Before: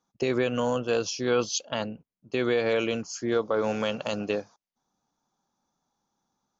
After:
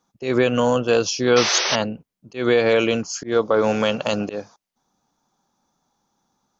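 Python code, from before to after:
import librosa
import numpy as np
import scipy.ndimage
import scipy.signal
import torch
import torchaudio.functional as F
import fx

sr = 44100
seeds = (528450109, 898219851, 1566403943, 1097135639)

y = fx.spec_paint(x, sr, seeds[0], shape='noise', start_s=1.36, length_s=0.4, low_hz=340.0, high_hz=6200.0, level_db=-30.0)
y = fx.auto_swell(y, sr, attack_ms=154.0)
y = y * 10.0 ** (8.0 / 20.0)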